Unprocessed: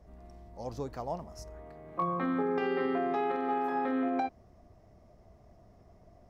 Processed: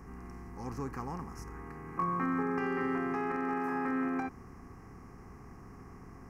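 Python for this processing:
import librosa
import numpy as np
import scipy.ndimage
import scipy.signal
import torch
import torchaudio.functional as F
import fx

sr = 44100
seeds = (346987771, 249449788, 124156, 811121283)

y = fx.bin_compress(x, sr, power=0.6)
y = fx.fixed_phaser(y, sr, hz=1500.0, stages=4)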